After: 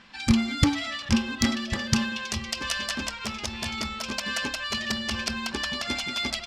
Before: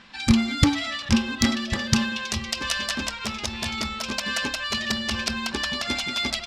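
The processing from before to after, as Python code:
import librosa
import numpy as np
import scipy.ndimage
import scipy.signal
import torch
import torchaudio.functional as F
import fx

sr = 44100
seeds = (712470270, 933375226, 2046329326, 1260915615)

y = fx.notch(x, sr, hz=3800.0, q=17.0)
y = y * 10.0 ** (-2.5 / 20.0)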